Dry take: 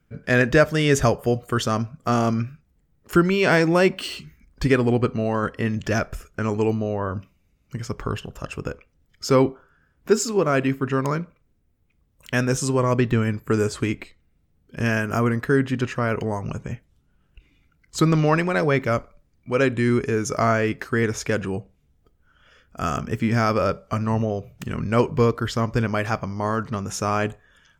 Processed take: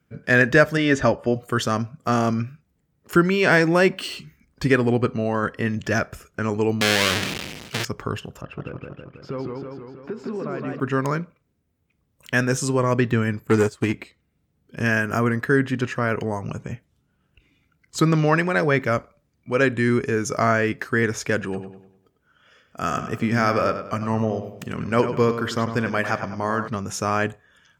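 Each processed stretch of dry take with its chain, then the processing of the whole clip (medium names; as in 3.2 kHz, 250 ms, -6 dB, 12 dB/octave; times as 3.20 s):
0.77–1.36 s: distance through air 120 m + comb 3.4 ms, depth 47%
6.81–7.85 s: square wave that keeps the level + frequency weighting D + decay stretcher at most 35 dB/s
8.41–10.80 s: compression, threshold -26 dBFS + distance through air 390 m + modulated delay 161 ms, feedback 65%, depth 146 cents, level -3 dB
13.47–13.94 s: waveshaping leveller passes 2 + upward expansion 2.5:1, over -30 dBFS
21.40–26.68 s: bass shelf 92 Hz -8 dB + filtered feedback delay 99 ms, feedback 42%, low-pass 5 kHz, level -9 dB
whole clip: high-pass 87 Hz; dynamic bell 1.7 kHz, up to +5 dB, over -38 dBFS, Q 3.8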